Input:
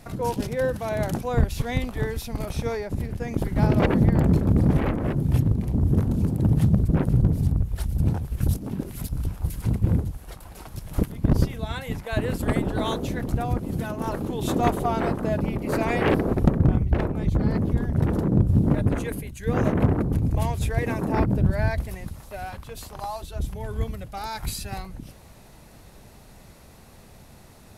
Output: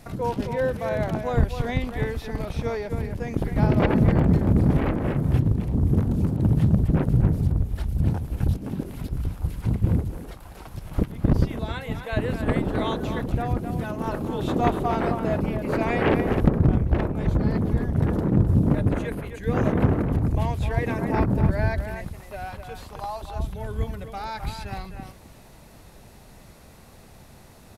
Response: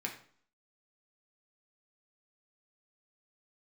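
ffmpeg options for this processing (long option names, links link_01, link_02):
-filter_complex "[0:a]acrossover=split=4200[link_01][link_02];[link_02]acompressor=threshold=-52dB:ratio=4:attack=1:release=60[link_03];[link_01][link_03]amix=inputs=2:normalize=0,asplit=2[link_04][link_05];[link_05]adelay=260,highpass=300,lowpass=3400,asoftclip=type=hard:threshold=-17dB,volume=-7dB[link_06];[link_04][link_06]amix=inputs=2:normalize=0"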